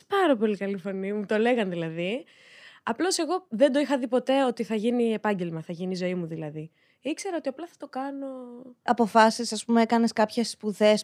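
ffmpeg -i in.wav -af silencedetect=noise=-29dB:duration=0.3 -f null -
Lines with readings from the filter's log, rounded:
silence_start: 2.18
silence_end: 2.87 | silence_duration: 0.69
silence_start: 6.61
silence_end: 7.06 | silence_duration: 0.45
silence_start: 8.28
silence_end: 8.88 | silence_duration: 0.60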